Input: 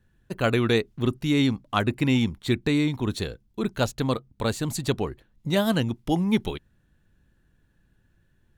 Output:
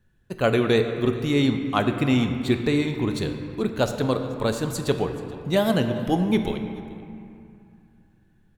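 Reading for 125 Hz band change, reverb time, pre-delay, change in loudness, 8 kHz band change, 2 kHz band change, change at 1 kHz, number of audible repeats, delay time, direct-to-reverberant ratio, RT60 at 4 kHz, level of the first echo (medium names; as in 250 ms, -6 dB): +0.5 dB, 2.5 s, 5 ms, +1.5 dB, -0.5 dB, +0.5 dB, +2.5 dB, 1, 430 ms, 6.0 dB, 1.5 s, -21.0 dB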